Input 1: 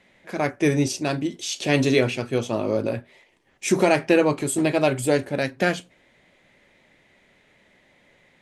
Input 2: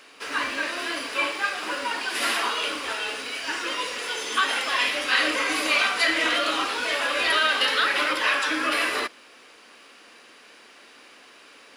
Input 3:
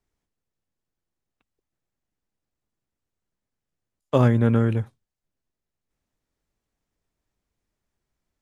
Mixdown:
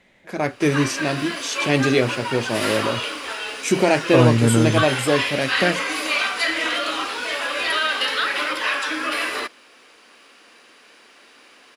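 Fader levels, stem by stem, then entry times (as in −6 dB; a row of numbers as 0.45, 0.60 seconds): +1.0, 0.0, +2.0 decibels; 0.00, 0.40, 0.00 seconds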